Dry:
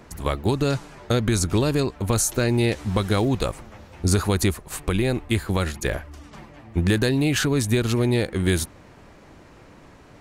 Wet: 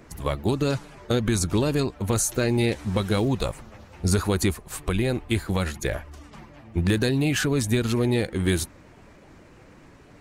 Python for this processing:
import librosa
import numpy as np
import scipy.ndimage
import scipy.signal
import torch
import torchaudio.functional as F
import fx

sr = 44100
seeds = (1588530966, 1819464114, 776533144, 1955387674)

y = fx.spec_quant(x, sr, step_db=15)
y = y * librosa.db_to_amplitude(-1.5)